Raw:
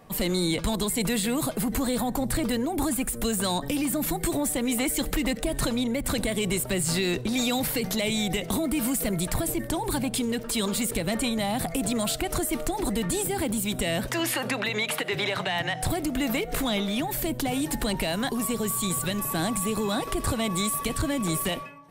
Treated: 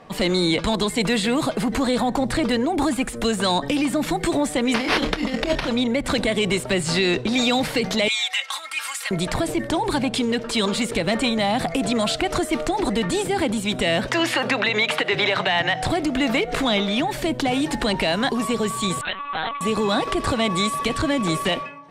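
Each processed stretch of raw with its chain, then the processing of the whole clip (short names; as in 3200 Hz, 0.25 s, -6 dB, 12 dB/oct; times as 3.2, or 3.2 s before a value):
4.74–5.69 doubler 27 ms -5.5 dB + negative-ratio compressor -27 dBFS, ratio -0.5 + sample-rate reducer 7300 Hz
8.08–9.11 HPF 1100 Hz 24 dB/oct + comb 3.7 ms, depth 78%
19.01–19.61 HPF 790 Hz + LPC vocoder at 8 kHz pitch kept
whole clip: LPF 5000 Hz 12 dB/oct; low shelf 170 Hz -9.5 dB; gain +8 dB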